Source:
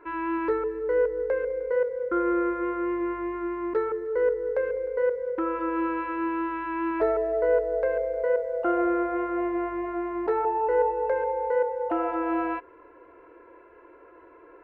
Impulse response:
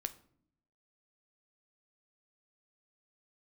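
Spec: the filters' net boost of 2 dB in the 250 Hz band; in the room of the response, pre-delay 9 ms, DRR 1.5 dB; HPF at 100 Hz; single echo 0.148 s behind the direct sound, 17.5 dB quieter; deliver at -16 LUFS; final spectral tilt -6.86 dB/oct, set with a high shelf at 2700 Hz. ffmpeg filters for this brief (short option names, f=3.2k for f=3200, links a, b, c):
-filter_complex "[0:a]highpass=100,equalizer=f=250:t=o:g=3.5,highshelf=f=2.7k:g=7.5,aecho=1:1:148:0.133,asplit=2[a][b];[1:a]atrim=start_sample=2205,adelay=9[c];[b][c]afir=irnorm=-1:irlink=0,volume=-0.5dB[d];[a][d]amix=inputs=2:normalize=0,volume=6.5dB"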